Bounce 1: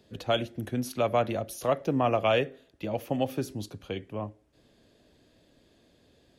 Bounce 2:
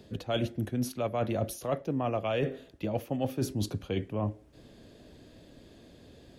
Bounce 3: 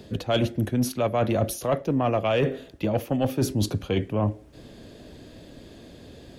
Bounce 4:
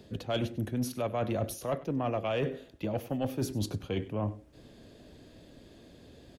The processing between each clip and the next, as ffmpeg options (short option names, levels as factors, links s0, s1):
-af "lowshelf=f=460:g=5.5,areverse,acompressor=threshold=0.0251:ratio=12,areverse,volume=1.88"
-af "asoftclip=type=tanh:threshold=0.0944,volume=2.51"
-af "aecho=1:1:97:0.133,volume=0.398"